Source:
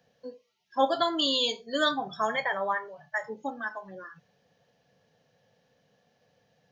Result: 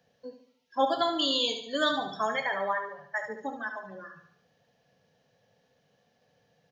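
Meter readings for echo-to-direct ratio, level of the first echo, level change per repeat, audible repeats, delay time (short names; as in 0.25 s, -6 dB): -7.0 dB, -8.0 dB, -6.5 dB, 5, 72 ms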